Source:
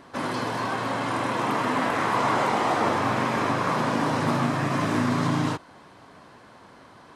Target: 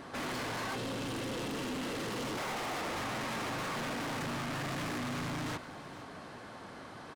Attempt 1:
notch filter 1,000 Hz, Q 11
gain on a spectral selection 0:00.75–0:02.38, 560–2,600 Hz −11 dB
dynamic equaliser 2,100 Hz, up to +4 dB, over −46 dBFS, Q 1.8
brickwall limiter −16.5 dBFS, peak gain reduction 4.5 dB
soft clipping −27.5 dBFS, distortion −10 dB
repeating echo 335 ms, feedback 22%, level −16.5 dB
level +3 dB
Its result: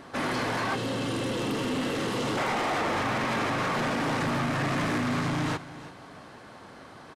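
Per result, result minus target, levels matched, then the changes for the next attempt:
echo 131 ms early; soft clipping: distortion −6 dB
change: repeating echo 466 ms, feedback 22%, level −16.5 dB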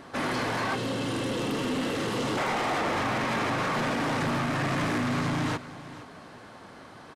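soft clipping: distortion −6 dB
change: soft clipping −39 dBFS, distortion −4 dB

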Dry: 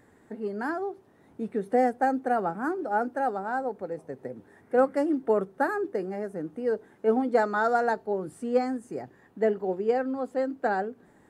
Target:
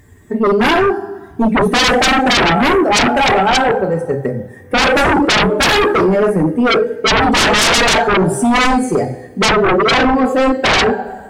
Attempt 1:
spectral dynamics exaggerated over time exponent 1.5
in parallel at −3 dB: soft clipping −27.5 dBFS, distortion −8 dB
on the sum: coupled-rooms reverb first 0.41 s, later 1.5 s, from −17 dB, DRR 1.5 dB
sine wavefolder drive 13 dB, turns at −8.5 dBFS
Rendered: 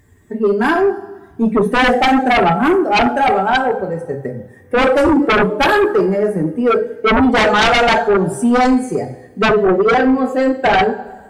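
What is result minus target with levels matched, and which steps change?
sine wavefolder: distortion −9 dB
change: sine wavefolder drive 19 dB, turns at −8.5 dBFS

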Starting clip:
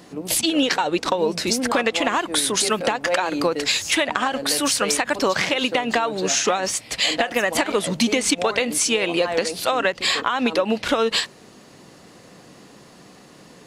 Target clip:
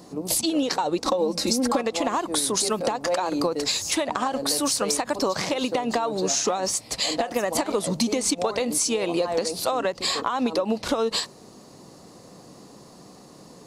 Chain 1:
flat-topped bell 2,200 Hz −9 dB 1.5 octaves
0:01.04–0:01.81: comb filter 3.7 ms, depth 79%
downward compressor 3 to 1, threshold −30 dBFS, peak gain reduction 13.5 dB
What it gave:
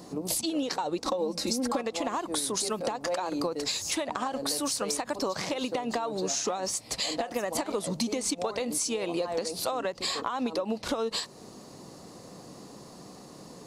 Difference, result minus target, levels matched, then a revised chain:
downward compressor: peak gain reduction +6.5 dB
flat-topped bell 2,200 Hz −9 dB 1.5 octaves
0:01.04–0:01.81: comb filter 3.7 ms, depth 79%
downward compressor 3 to 1, threshold −20.5 dBFS, peak gain reduction 7 dB

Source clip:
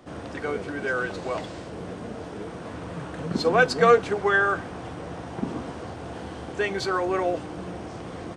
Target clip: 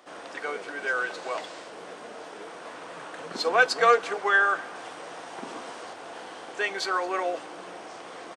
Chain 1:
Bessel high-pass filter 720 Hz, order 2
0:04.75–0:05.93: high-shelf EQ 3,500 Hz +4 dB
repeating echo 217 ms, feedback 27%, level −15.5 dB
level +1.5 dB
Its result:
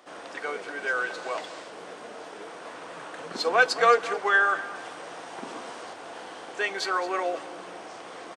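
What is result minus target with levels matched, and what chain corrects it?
echo-to-direct +7 dB
Bessel high-pass filter 720 Hz, order 2
0:04.75–0:05.93: high-shelf EQ 3,500 Hz +4 dB
repeating echo 217 ms, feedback 27%, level −22.5 dB
level +1.5 dB

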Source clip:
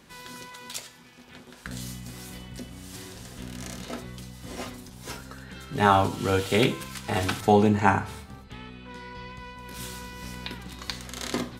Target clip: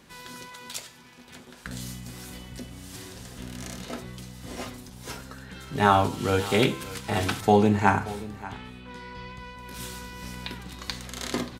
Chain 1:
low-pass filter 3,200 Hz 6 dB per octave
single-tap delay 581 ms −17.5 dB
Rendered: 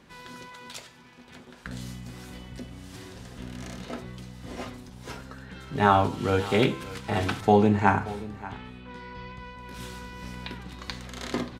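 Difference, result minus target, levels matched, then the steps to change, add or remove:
4,000 Hz band −3.5 dB
remove: low-pass filter 3,200 Hz 6 dB per octave

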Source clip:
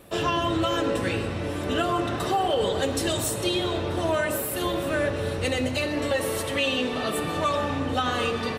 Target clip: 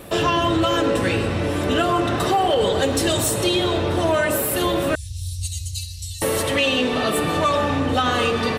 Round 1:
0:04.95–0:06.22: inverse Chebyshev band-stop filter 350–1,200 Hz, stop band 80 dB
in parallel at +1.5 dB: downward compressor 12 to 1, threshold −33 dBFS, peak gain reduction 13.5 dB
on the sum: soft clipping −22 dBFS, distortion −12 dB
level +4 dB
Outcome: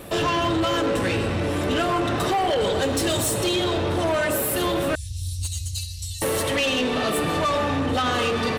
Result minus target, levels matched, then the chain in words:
soft clipping: distortion +12 dB
0:04.95–0:06.22: inverse Chebyshev band-stop filter 350–1,200 Hz, stop band 80 dB
in parallel at +1.5 dB: downward compressor 12 to 1, threshold −33 dBFS, peak gain reduction 13.5 dB
on the sum: soft clipping −13 dBFS, distortion −24 dB
level +4 dB

